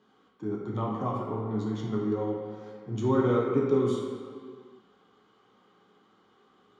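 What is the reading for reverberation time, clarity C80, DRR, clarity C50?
no single decay rate, 2.5 dB, -4.0 dB, 1.0 dB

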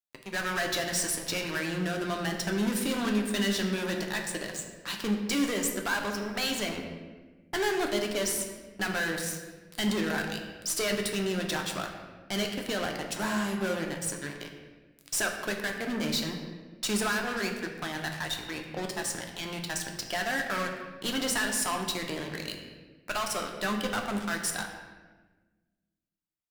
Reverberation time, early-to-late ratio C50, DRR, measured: 1.3 s, 5.5 dB, 2.0 dB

